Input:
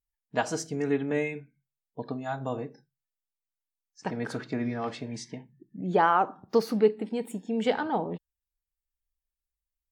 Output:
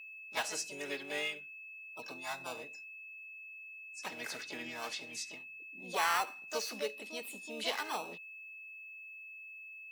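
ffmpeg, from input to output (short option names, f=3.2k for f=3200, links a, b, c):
-filter_complex "[0:a]acrossover=split=4700[a][b];[b]acompressor=threshold=-60dB:ratio=4:attack=1:release=60[c];[a][c]amix=inputs=2:normalize=0,aderivative,acrossover=split=410|1300[d][e][f];[d]alimiter=level_in=25.5dB:limit=-24dB:level=0:latency=1:release=339,volume=-25.5dB[g];[e]acrusher=samples=13:mix=1:aa=0.000001[h];[g][h][f]amix=inputs=3:normalize=0,asplit=2[i][j];[j]asetrate=58866,aresample=44100,atempo=0.749154,volume=-3dB[k];[i][k]amix=inputs=2:normalize=0,aeval=exprs='val(0)+0.00158*sin(2*PI*2600*n/s)':c=same,asplit=2[l][m];[m]asoftclip=type=hard:threshold=-38.5dB,volume=-3dB[n];[l][n]amix=inputs=2:normalize=0,volume=4.5dB"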